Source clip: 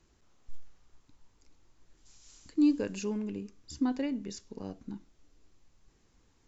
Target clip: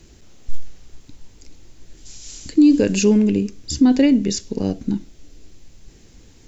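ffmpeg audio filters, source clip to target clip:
ffmpeg -i in.wav -af "equalizer=frequency=1100:width=1.2:gain=-11,alimiter=level_in=25dB:limit=-1dB:release=50:level=0:latency=1,volume=-5dB" out.wav

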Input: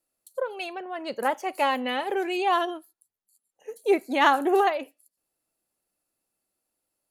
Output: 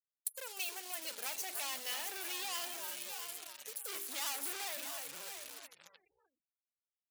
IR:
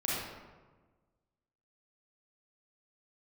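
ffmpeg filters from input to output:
-filter_complex "[0:a]equalizer=frequency=160:width_type=o:width=2.1:gain=3,bandreject=frequency=50:width_type=h:width=6,bandreject=frequency=100:width_type=h:width=6,bandreject=frequency=150:width_type=h:width=6,bandreject=frequency=200:width_type=h:width=6,bandreject=frequency=250:width_type=h:width=6,bandreject=frequency=300:width_type=h:width=6,bandreject=frequency=350:width_type=h:width=6,bandreject=frequency=400:width_type=h:width=6,asplit=2[link_01][link_02];[link_02]asplit=3[link_03][link_04][link_05];[link_03]adelay=303,afreqshift=-110,volume=-14.5dB[link_06];[link_04]adelay=606,afreqshift=-220,volume=-23.1dB[link_07];[link_05]adelay=909,afreqshift=-330,volume=-31.8dB[link_08];[link_06][link_07][link_08]amix=inputs=3:normalize=0[link_09];[link_01][link_09]amix=inputs=2:normalize=0,asoftclip=type=hard:threshold=-29.5dB,acompressor=threshold=-43dB:ratio=3,asplit=2[link_10][link_11];[link_11]aecho=0:1:669:0.355[link_12];[link_10][link_12]amix=inputs=2:normalize=0,acrusher=bits=9:dc=4:mix=0:aa=0.000001,afftfilt=real='re*gte(hypot(re,im),0.000708)':imag='im*gte(hypot(re,im),0.000708)':win_size=1024:overlap=0.75,aderivative,volume=12dB"

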